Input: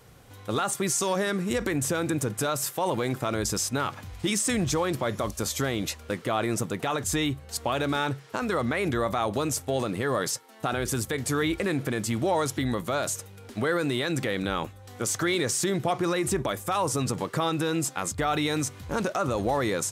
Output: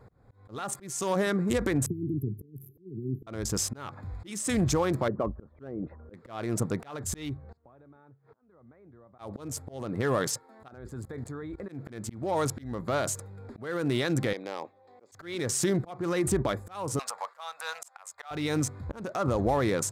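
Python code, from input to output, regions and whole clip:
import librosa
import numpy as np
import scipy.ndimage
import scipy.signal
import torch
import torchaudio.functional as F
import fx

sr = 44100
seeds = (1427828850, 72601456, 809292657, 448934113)

y = fx.chain(x, sr, fx.brickwall_bandstop(low_hz=440.0, high_hz=11000.0),
    fx.peak_eq(hz=390.0, db=-4.5, octaves=3.0),
    fx.band_squash(depth_pct=40), at=(1.86, 3.27))
y = fx.chain(y, sr, fx.envelope_sharpen(power=1.5),
    fx.lowpass(hz=1500.0, slope=24),
    fx.peak_eq(hz=92.0, db=-15.0, octaves=0.37), at=(5.08, 6.14))
y = fx.chain(y, sr, fx.highpass(hz=77.0, slope=24),
    fx.gate_flip(shuts_db=-29.0, range_db=-27),
    fx.spacing_loss(db_at_10k=27), at=(7.37, 9.19))
y = fx.chain(y, sr, fx.peak_eq(hz=2300.0, db=-3.5, octaves=0.25),
    fx.level_steps(step_db=19), at=(10.68, 11.69))
y = fx.chain(y, sr, fx.bandpass_edges(low_hz=540.0, high_hz=3600.0),
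    fx.peak_eq(hz=1400.0, db=-14.5, octaves=0.74), at=(14.33, 15.12))
y = fx.chain(y, sr, fx.cheby2_highpass(hz=350.0, order=4, stop_db=40),
    fx.band_squash(depth_pct=40), at=(16.99, 18.31))
y = fx.wiener(y, sr, points=15)
y = fx.low_shelf(y, sr, hz=140.0, db=4.5)
y = fx.auto_swell(y, sr, attack_ms=357.0)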